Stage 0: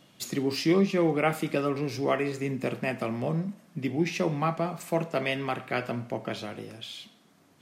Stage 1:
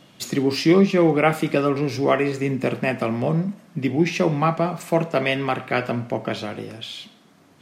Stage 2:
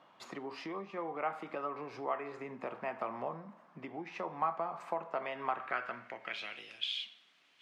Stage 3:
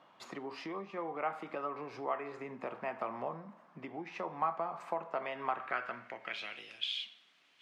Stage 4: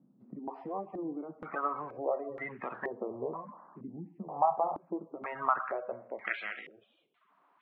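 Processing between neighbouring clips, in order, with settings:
treble shelf 7 kHz -6 dB; trim +7.5 dB
compression 6:1, threshold -24 dBFS, peak gain reduction 13 dB; band-pass sweep 1 kHz -> 2.9 kHz, 5.50–6.61 s
no audible change
coarse spectral quantiser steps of 30 dB; step-sequenced low-pass 2.1 Hz 230–1900 Hz

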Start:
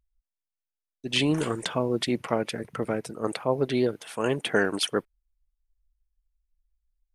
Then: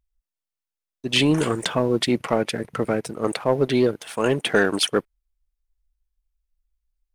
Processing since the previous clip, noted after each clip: waveshaping leveller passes 1; trim +2 dB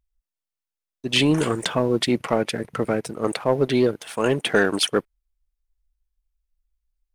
no audible change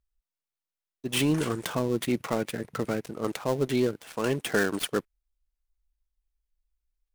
dead-time distortion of 0.095 ms; dynamic bell 670 Hz, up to -4 dB, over -29 dBFS, Q 0.89; trim -4.5 dB

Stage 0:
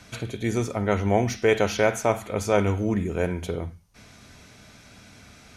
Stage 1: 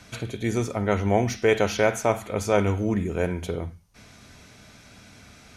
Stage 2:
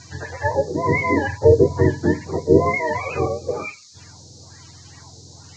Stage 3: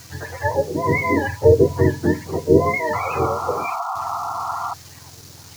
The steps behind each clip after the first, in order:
no audible change
spectrum inverted on a logarithmic axis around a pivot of 450 Hz; LFO low-pass sine 1.1 Hz 450–5500 Hz; band noise 4–7.1 kHz -52 dBFS; trim +4 dB
bit crusher 7-bit; painted sound noise, 2.93–4.74 s, 670–1400 Hz -26 dBFS

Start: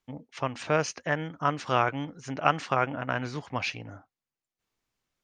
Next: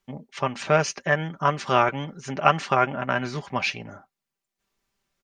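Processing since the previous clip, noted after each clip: comb 5.1 ms, depth 54%; trim +4 dB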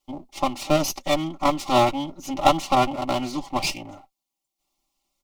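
comb filter that takes the minimum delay 3.7 ms; static phaser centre 320 Hz, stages 8; trim +5.5 dB

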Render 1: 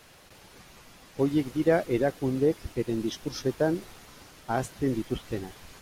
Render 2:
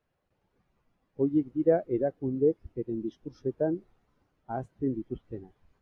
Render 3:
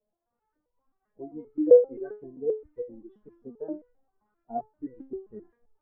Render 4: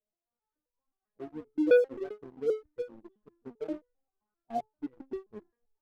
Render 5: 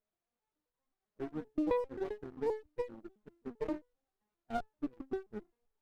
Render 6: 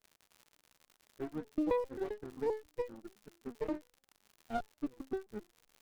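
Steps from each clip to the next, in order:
treble shelf 2.7 kHz -9.5 dB; spectral contrast expander 1.5:1
LFO low-pass saw up 1.8 Hz 550–1800 Hz; resonator arpeggio 7.6 Hz 210–490 Hz; trim +7.5 dB
waveshaping leveller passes 2; trim -8.5 dB
compression 5:1, threshold -32 dBFS, peak gain reduction 12.5 dB; sliding maximum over 17 samples; trim +1.5 dB
crackle 110 per s -47 dBFS

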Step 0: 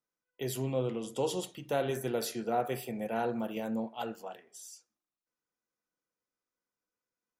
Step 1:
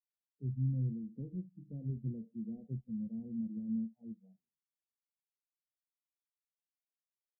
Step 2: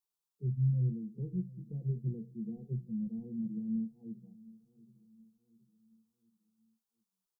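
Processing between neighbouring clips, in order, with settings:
spectral noise reduction 27 dB; inverse Chebyshev low-pass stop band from 1.2 kHz, stop band 80 dB; trim +5 dB
static phaser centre 400 Hz, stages 8; feedback delay 724 ms, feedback 48%, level -20.5 dB; trim +6 dB

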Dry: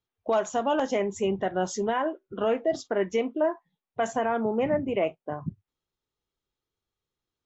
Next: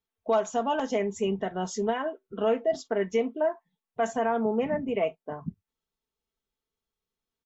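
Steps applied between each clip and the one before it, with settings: comb 4.5 ms, depth 56%; trim -3 dB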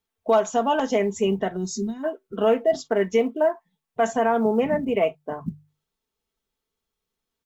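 time-frequency box 1.56–2.04 s, 400–3600 Hz -23 dB; hum notches 50/100/150 Hz; short-mantissa float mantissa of 6-bit; trim +5.5 dB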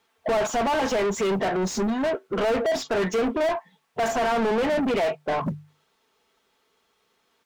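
overdrive pedal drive 36 dB, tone 2 kHz, clips at -9 dBFS; trim -7.5 dB

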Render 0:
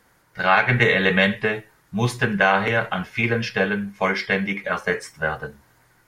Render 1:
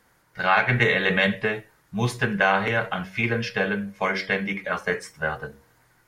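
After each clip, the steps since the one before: de-hum 94.62 Hz, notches 7; trim -2.5 dB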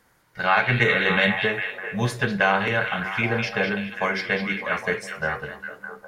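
repeats whose band climbs or falls 203 ms, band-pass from 3.2 kHz, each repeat -0.7 oct, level -3 dB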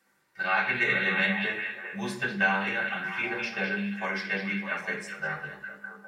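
reverberation RT60 0.55 s, pre-delay 3 ms, DRR -3 dB; trim -9 dB

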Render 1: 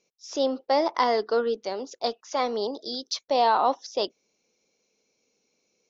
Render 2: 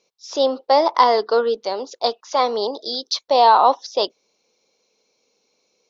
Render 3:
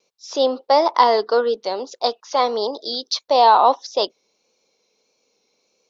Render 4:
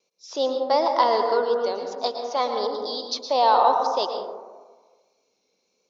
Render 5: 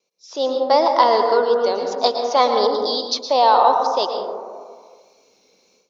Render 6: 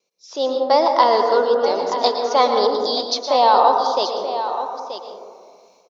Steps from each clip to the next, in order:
graphic EQ 500/1000/4000 Hz +5/+9/+9 dB
vibrato 1.6 Hz 34 cents
plate-style reverb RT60 1.4 s, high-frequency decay 0.25×, pre-delay 100 ms, DRR 4 dB; trim -6 dB
level rider gain up to 14.5 dB; trim -1 dB
delay 930 ms -10.5 dB

